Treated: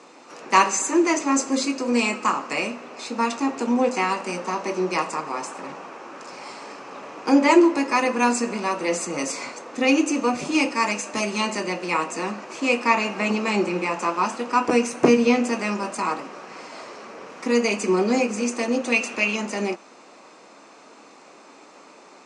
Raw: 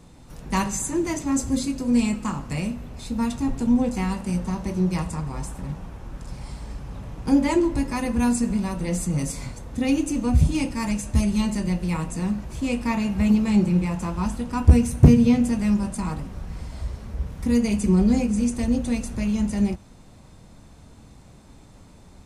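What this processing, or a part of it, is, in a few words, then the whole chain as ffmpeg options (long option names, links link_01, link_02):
phone speaker on a table: -filter_complex "[0:a]asettb=1/sr,asplit=3[link_01][link_02][link_03];[link_01]atrim=end=18.924[link_04];[link_02]atrim=start=18.92:end=19.36,asetpts=PTS-STARTPTS,afade=type=in:duration=0.004:curve=qsin,afade=type=out:start_time=0.436:duration=0.004:curve=qsin,equalizer=frequency=2700:width_type=o:width=0.53:gain=11[link_05];[link_03]atrim=start=19.356[link_06];[link_04][link_05]acrossfade=duration=0.004:curve1=hsin:curve2=qsin[link_07];[link_07][link_06]acrossfade=duration=0.004:curve1=qsin:curve2=hsin,highpass=frequency=330:width=0.5412,highpass=frequency=330:width=1.3066,equalizer=frequency=1200:width_type=q:width=4:gain=6,equalizer=frequency=2500:width_type=q:width=4:gain=5,equalizer=frequency=3500:width_type=q:width=4:gain=-6,lowpass=frequency=7000:width=0.5412,lowpass=frequency=7000:width=1.3066,volume=8dB"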